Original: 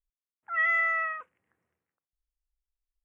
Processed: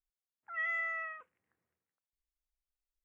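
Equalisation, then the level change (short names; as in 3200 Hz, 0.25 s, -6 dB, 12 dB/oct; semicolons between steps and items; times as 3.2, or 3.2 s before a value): dynamic EQ 1200 Hz, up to -5 dB, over -40 dBFS, Q 0.97; -7.0 dB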